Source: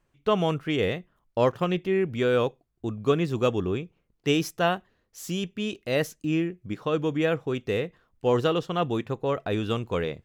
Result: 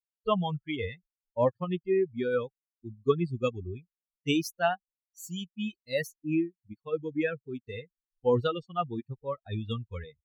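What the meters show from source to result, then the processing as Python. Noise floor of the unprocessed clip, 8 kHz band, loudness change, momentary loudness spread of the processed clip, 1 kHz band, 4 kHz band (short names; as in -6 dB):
-73 dBFS, -4.5 dB, -4.5 dB, 14 LU, -4.0 dB, -6.0 dB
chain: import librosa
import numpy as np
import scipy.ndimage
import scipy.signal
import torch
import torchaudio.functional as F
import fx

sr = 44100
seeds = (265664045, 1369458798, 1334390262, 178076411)

p1 = fx.bin_expand(x, sr, power=3.0)
p2 = fx.rider(p1, sr, range_db=4, speed_s=2.0)
p3 = p1 + (p2 * 10.0 ** (-1.5 / 20.0))
y = p3 * 10.0 ** (-3.5 / 20.0)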